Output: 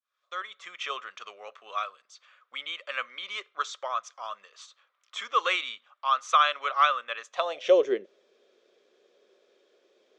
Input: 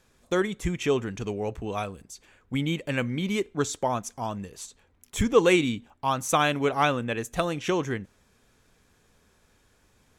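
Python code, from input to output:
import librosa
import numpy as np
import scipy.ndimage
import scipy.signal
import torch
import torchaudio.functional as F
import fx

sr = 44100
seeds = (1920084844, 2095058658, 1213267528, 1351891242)

y = fx.fade_in_head(x, sr, length_s=0.82)
y = fx.cabinet(y, sr, low_hz=270.0, low_slope=12, high_hz=5700.0, hz=(290.0, 570.0, 890.0, 1600.0, 3400.0), db=(-6, 10, -9, -4, 6))
y = fx.filter_sweep_highpass(y, sr, from_hz=1200.0, to_hz=370.0, start_s=7.26, end_s=7.88, q=5.0)
y = y * librosa.db_to_amplitude(-4.0)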